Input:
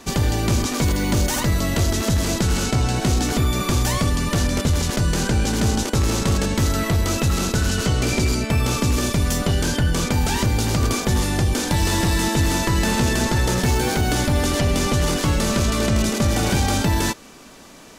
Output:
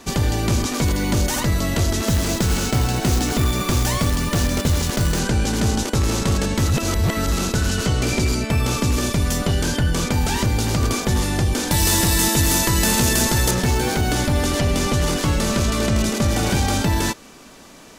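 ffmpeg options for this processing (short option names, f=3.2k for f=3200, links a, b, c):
-filter_complex "[0:a]asettb=1/sr,asplit=3[a][b][c];[a]atrim=end=2.084[d];[b]atrim=start=2.08:end=5.19,asetpts=PTS-STARTPTS,afade=t=in:d=0.004:c=qsin,afade=t=out:st=3.106:d=0.004:c=qsin,acrusher=bits=3:mode=log:mix=0:aa=0.000001[e];[c]atrim=start=5.186[f];[d][e]acrossfade=d=0.004:c1=hsin:c2=qsin[g];[g][f]acrossfade=d=0.004:c1=qsin:c2=hsin,asettb=1/sr,asplit=3[h][i][j];[h]atrim=end=11.714[k];[i]atrim=start=11.71:end=13.51,asetpts=PTS-STARTPTS,afade=t=in:d=0.004:c=qsin,afade=t=out:st=1.796:d=0.004:c=qsin,aemphasis=mode=production:type=50kf[l];[j]atrim=start=13.506[m];[k][l]acrossfade=d=0.004:c1=hsin:c2=qsin[n];[n][m]acrossfade=d=0.004:c1=qsin:c2=hsin,asplit=3[o][p][q];[o]atrim=end=6.682[r];[p]atrim=start=6.678:end=7.322,asetpts=PTS-STARTPTS,areverse[s];[q]atrim=start=7.318[t];[r][s]acrossfade=d=0.004:c1=hsin:c2=hsin[u];[u][t]acrossfade=d=0.004:c1=hsin:c2=hsin"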